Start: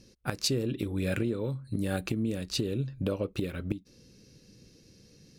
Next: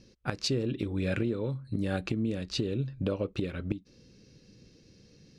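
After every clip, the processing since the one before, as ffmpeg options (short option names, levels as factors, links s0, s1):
-af "lowpass=5300"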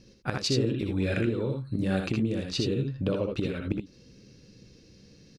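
-af "aecho=1:1:63|78:0.473|0.562,volume=1.19"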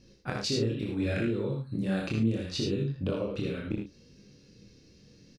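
-filter_complex "[0:a]flanger=delay=20:depth=7.7:speed=0.71,asplit=2[s0][s1];[s1]adelay=35,volume=0.422[s2];[s0][s2]amix=inputs=2:normalize=0"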